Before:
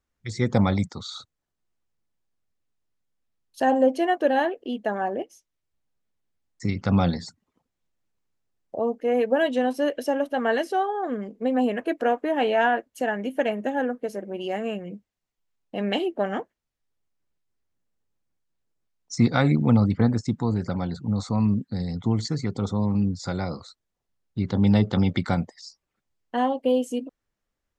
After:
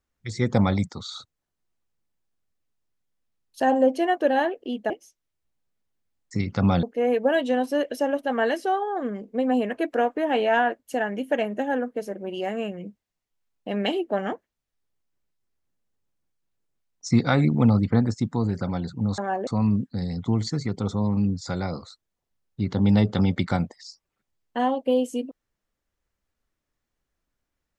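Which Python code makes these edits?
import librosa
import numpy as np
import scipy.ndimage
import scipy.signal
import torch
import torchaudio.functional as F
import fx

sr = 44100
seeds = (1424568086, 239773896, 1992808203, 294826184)

y = fx.edit(x, sr, fx.move(start_s=4.9, length_s=0.29, to_s=21.25),
    fx.cut(start_s=7.12, length_s=1.78), tone=tone)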